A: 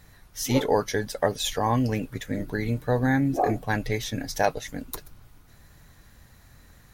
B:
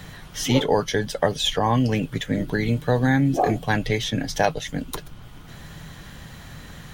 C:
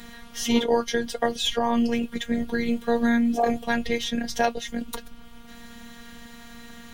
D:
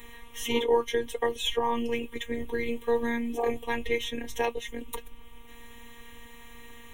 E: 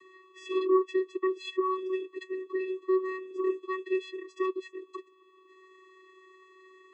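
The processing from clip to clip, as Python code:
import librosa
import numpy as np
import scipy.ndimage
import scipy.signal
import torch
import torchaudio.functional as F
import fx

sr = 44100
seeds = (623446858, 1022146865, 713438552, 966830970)

y1 = fx.graphic_eq_31(x, sr, hz=(160, 3150, 12500), db=(8, 10, -10))
y1 = fx.band_squash(y1, sr, depth_pct=40)
y1 = y1 * 10.0 ** (3.0 / 20.0)
y2 = fx.robotise(y1, sr, hz=235.0)
y3 = fx.fixed_phaser(y2, sr, hz=980.0, stages=8)
y4 = fx.vocoder(y3, sr, bands=16, carrier='square', carrier_hz=375.0)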